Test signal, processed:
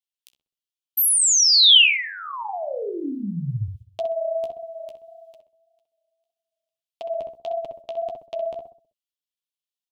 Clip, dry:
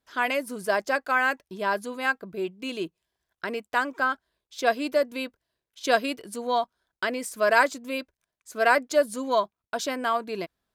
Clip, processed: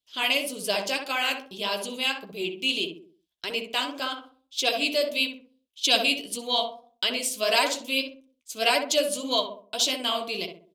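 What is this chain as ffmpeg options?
ffmpeg -i in.wav -filter_complex "[0:a]agate=range=-11dB:threshold=-46dB:ratio=16:detection=peak,highshelf=frequency=2200:width_type=q:width=3:gain=11,asplit=2[link_01][link_02];[link_02]adelay=64,lowpass=frequency=1100:poles=1,volume=-3.5dB,asplit=2[link_03][link_04];[link_04]adelay=64,lowpass=frequency=1100:poles=1,volume=0.45,asplit=2[link_05][link_06];[link_06]adelay=64,lowpass=frequency=1100:poles=1,volume=0.45,asplit=2[link_07][link_08];[link_08]adelay=64,lowpass=frequency=1100:poles=1,volume=0.45,asplit=2[link_09][link_10];[link_10]adelay=64,lowpass=frequency=1100:poles=1,volume=0.45,asplit=2[link_11][link_12];[link_12]adelay=64,lowpass=frequency=1100:poles=1,volume=0.45[link_13];[link_01][link_03][link_05][link_07][link_09][link_11][link_13]amix=inputs=7:normalize=0,flanger=delay=6.5:depth=9.2:regen=-26:speed=1.7:shape=sinusoidal" out.wav

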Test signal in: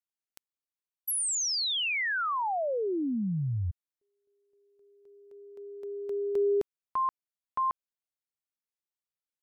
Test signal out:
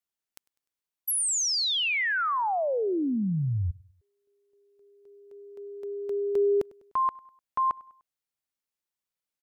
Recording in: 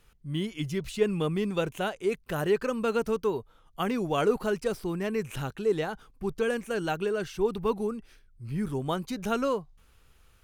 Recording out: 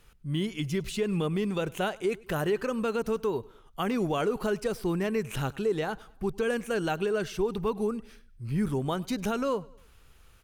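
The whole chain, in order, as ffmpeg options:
ffmpeg -i in.wav -af "alimiter=limit=-22dB:level=0:latency=1:release=146,aecho=1:1:100|200|300:0.0668|0.0307|0.0141,volume=3dB" out.wav

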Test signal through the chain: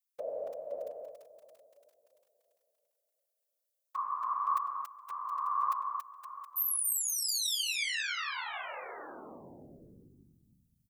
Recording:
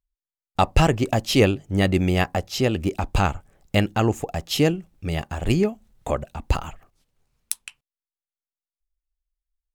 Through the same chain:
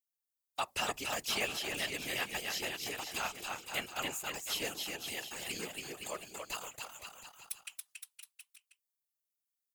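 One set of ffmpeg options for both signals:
ffmpeg -i in.wav -filter_complex "[0:a]acrossover=split=3200[link_01][link_02];[link_02]acompressor=threshold=-37dB:ratio=4:attack=1:release=60[link_03];[link_01][link_03]amix=inputs=2:normalize=0,aderivative,asplit=2[link_04][link_05];[link_05]aecho=0:1:280|518|720.3|892.3|1038:0.631|0.398|0.251|0.158|0.1[link_06];[link_04][link_06]amix=inputs=2:normalize=0,afftfilt=real='hypot(re,im)*cos(2*PI*random(0))':imag='hypot(re,im)*sin(2*PI*random(1))':win_size=512:overlap=0.75,volume=7.5dB" out.wav

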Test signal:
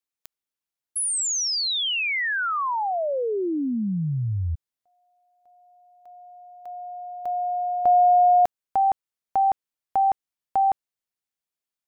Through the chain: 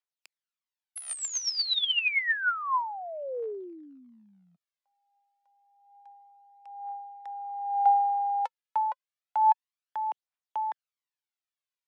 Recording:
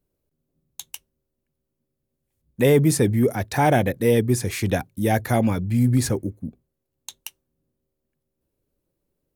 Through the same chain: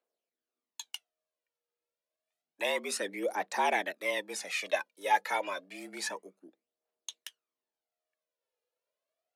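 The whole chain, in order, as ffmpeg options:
ffmpeg -i in.wav -af "aemphasis=mode=production:type=75kf,aphaser=in_gain=1:out_gain=1:delay=2.6:decay=0.63:speed=0.29:type=triangular,highpass=610,lowpass=3200,afreqshift=90,volume=-6.5dB" out.wav

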